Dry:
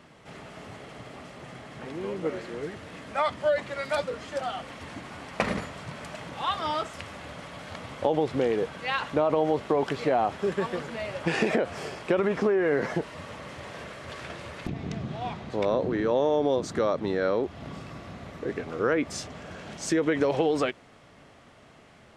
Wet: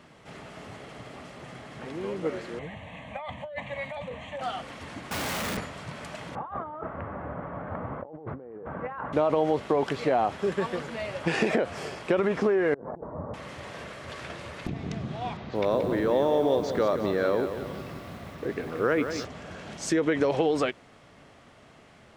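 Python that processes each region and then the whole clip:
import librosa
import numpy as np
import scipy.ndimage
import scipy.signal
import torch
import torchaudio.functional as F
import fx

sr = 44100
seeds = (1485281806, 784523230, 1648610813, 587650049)

y = fx.chain(x, sr, fx.over_compress(threshold_db=-31.0, ratio=-1.0),
    fx.air_absorb(metres=81.0),
    fx.fixed_phaser(hz=1400.0, stages=6), at=(2.59, 4.41))
y = fx.chain(y, sr, fx.clip_1bit(),
    fx.highpass(hz=45.0, slope=12), at=(5.11, 5.57))
y = fx.chain(y, sr, fx.lowpass(hz=1400.0, slope=24),
    fx.over_compress(threshold_db=-37.0, ratio=-1.0), at=(6.35, 9.13))
y = fx.chain(y, sr, fx.cheby2_lowpass(hz=2600.0, order=4, stop_db=50),
    fx.over_compress(threshold_db=-39.0, ratio=-1.0), at=(12.74, 13.34))
y = fx.chain(y, sr, fx.lowpass(hz=5700.0, slope=24),
    fx.echo_crushed(ms=178, feedback_pct=55, bits=8, wet_db=-8.5), at=(15.37, 19.25))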